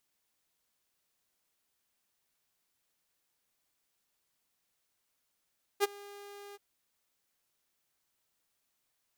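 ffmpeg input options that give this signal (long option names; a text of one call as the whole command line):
ffmpeg -f lavfi -i "aevalsrc='0.1*(2*mod(405*t,1)-1)':duration=0.778:sample_rate=44100,afade=type=in:duration=0.038,afade=type=out:start_time=0.038:duration=0.022:silence=0.0631,afade=type=out:start_time=0.75:duration=0.028" out.wav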